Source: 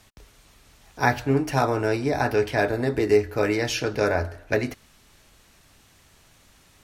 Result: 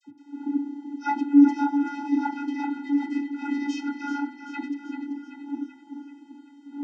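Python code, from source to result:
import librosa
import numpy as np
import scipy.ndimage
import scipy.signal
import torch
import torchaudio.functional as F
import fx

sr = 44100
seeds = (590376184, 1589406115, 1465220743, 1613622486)

p1 = fx.dmg_wind(x, sr, seeds[0], corner_hz=210.0, level_db=-31.0)
p2 = fx.vocoder(p1, sr, bands=32, carrier='square', carrier_hz=285.0)
p3 = fx.dispersion(p2, sr, late='lows', ms=51.0, hz=1300.0)
y = p3 + fx.echo_feedback(p3, sr, ms=385, feedback_pct=57, wet_db=-9.0, dry=0)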